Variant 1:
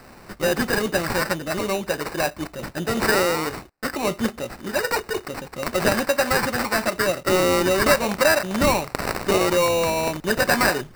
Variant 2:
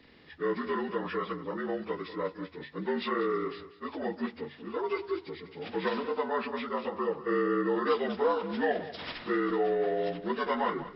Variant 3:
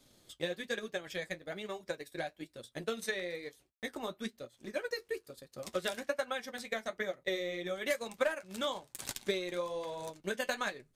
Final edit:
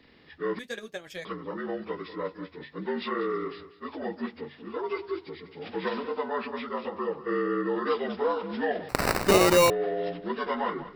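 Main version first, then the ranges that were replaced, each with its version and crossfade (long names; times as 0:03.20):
2
0:00.59–0:01.25: punch in from 3
0:08.89–0:09.70: punch in from 1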